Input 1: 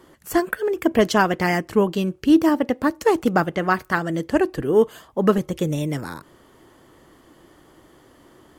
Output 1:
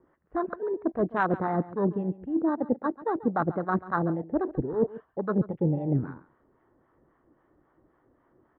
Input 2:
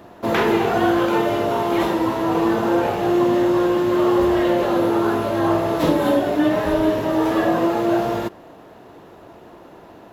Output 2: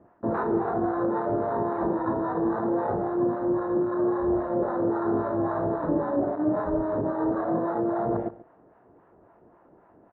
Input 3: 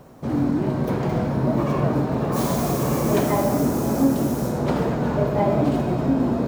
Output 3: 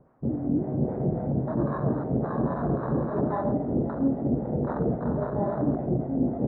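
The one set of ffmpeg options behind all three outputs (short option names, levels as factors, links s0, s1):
-filter_complex "[0:a]lowpass=f=1700:w=0.5412,lowpass=f=1700:w=1.3066,afwtdn=0.0708,areverse,acompressor=threshold=0.0447:ratio=6,areverse,acrossover=split=660[s0][s1];[s0]aeval=exprs='val(0)*(1-0.7/2+0.7/2*cos(2*PI*3.7*n/s))':c=same[s2];[s1]aeval=exprs='val(0)*(1-0.7/2-0.7/2*cos(2*PI*3.7*n/s))':c=same[s3];[s2][s3]amix=inputs=2:normalize=0,aecho=1:1:138:0.141,volume=2.11"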